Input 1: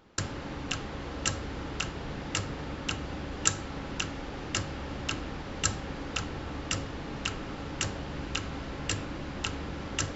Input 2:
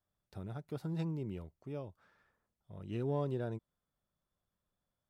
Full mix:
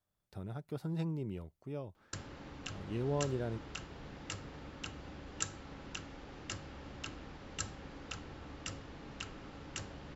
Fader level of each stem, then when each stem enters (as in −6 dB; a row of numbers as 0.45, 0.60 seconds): −11.5, +0.5 decibels; 1.95, 0.00 seconds